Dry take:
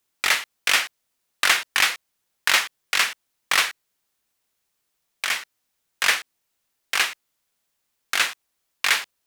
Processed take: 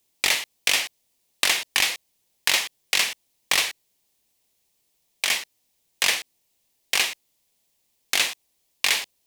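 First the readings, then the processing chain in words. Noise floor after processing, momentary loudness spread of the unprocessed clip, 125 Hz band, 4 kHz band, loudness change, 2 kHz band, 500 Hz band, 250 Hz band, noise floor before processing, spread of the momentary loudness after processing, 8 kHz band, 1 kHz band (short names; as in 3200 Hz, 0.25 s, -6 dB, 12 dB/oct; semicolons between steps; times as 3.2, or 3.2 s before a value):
-71 dBFS, 7 LU, n/a, +0.5 dB, -1.0 dB, -3.5 dB, +0.5 dB, +1.5 dB, -76 dBFS, 6 LU, +1.5 dB, -5.5 dB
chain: bell 1400 Hz -13.5 dB 0.77 oct; compressor, threshold -22 dBFS, peak gain reduction 7 dB; gain +5.5 dB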